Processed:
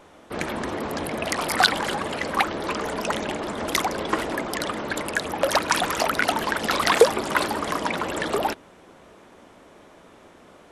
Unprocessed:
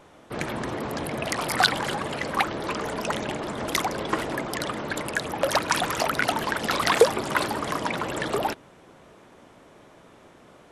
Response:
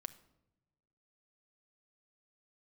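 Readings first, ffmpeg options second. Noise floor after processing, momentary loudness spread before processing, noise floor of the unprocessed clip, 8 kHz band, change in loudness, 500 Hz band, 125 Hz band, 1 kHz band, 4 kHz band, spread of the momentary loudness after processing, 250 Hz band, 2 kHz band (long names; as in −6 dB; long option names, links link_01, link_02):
−51 dBFS, 9 LU, −52 dBFS, +2.0 dB, +2.0 dB, +2.0 dB, −2.0 dB, +2.0 dB, +2.0 dB, 9 LU, +1.5 dB, +2.0 dB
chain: -af "equalizer=frequency=130:width_type=o:width=0.29:gain=-12.5,volume=2dB"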